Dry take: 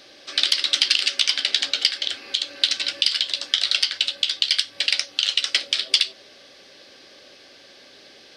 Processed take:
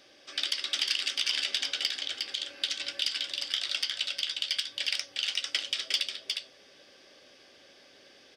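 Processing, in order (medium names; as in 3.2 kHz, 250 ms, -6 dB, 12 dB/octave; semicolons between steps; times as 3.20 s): band-stop 4.1 kHz, Q 7.1; saturation -4 dBFS, distortion -22 dB; delay 358 ms -4.5 dB; 1.33–1.96 s: three bands compressed up and down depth 70%; trim -9 dB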